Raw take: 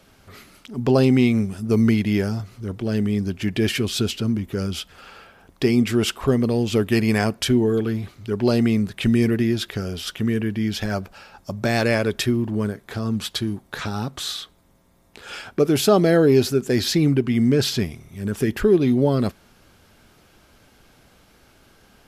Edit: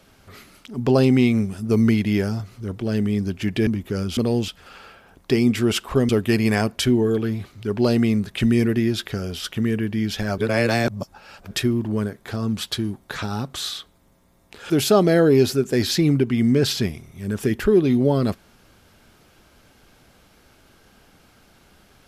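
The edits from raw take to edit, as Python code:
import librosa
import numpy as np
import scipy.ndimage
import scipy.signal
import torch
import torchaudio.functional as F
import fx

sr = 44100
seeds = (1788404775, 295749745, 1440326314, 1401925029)

y = fx.edit(x, sr, fx.cut(start_s=3.67, length_s=0.63),
    fx.move(start_s=6.41, length_s=0.31, to_s=4.8),
    fx.reverse_span(start_s=11.01, length_s=1.13),
    fx.cut(start_s=15.33, length_s=0.34), tone=tone)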